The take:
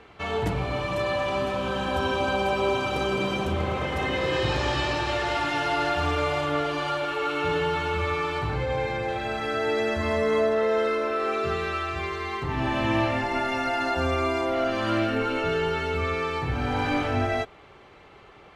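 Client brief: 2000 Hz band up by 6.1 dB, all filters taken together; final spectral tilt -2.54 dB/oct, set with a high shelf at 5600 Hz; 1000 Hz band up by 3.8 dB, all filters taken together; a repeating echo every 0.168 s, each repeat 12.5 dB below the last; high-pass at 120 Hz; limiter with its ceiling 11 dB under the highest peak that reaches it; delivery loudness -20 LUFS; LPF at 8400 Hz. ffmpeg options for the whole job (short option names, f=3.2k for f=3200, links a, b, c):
-af "highpass=120,lowpass=8.4k,equalizer=f=1k:t=o:g=3,equalizer=f=2k:t=o:g=7.5,highshelf=f=5.6k:g=-7,alimiter=limit=-21.5dB:level=0:latency=1,aecho=1:1:168|336|504:0.237|0.0569|0.0137,volume=8.5dB"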